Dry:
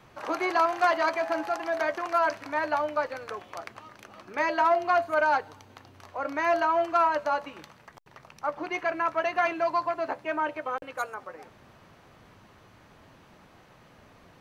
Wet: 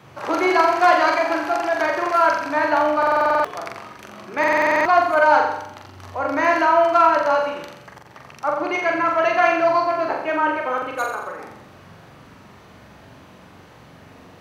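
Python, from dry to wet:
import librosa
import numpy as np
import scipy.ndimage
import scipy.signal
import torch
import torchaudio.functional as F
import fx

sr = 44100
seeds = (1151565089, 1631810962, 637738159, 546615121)

y = scipy.signal.sosfilt(scipy.signal.butter(2, 74.0, 'highpass', fs=sr, output='sos'), x)
y = fx.low_shelf(y, sr, hz=250.0, db=4.0)
y = fx.room_flutter(y, sr, wall_m=7.4, rt60_s=0.77)
y = fx.buffer_glitch(y, sr, at_s=(2.98, 4.39), block=2048, repeats=9)
y = F.gain(torch.from_numpy(y), 6.0).numpy()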